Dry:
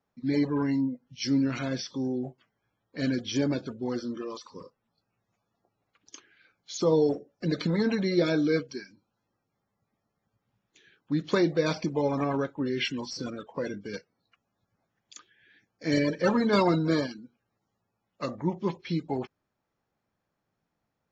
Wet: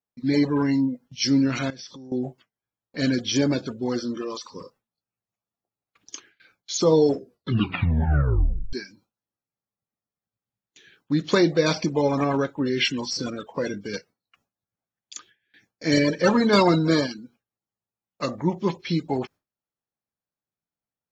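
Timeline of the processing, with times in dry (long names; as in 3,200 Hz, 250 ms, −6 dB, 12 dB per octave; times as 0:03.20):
0:01.70–0:02.12: downward compressor 8 to 1, threshold −45 dBFS
0:07.08: tape stop 1.65 s
whole clip: noise gate with hold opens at −51 dBFS; high-shelf EQ 3,700 Hz +6.5 dB; level +5 dB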